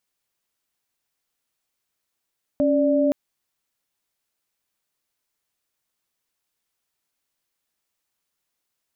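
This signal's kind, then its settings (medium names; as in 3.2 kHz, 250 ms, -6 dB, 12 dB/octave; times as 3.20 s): chord C#4/D5 sine, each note -19 dBFS 0.52 s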